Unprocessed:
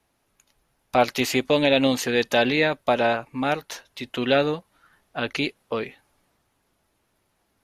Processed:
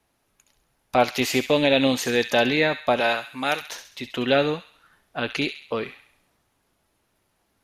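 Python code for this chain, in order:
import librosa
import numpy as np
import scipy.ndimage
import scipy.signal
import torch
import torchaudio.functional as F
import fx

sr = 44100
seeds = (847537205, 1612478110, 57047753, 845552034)

y = fx.tilt_eq(x, sr, slope=3.0, at=(3.0, 3.61))
y = fx.echo_wet_highpass(y, sr, ms=67, feedback_pct=47, hz=1800.0, wet_db=-8.0)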